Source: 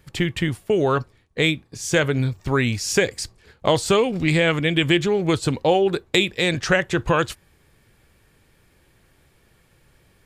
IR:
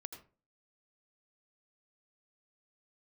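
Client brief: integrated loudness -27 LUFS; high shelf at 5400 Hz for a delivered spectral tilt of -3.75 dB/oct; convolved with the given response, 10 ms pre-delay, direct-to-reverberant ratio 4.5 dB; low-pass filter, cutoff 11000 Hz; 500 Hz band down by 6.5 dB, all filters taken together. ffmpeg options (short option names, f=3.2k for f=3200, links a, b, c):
-filter_complex "[0:a]lowpass=11k,equalizer=f=500:t=o:g=-8.5,highshelf=f=5.4k:g=4,asplit=2[a][b];[1:a]atrim=start_sample=2205,adelay=10[c];[b][c]afir=irnorm=-1:irlink=0,volume=-0.5dB[d];[a][d]amix=inputs=2:normalize=0,volume=-5.5dB"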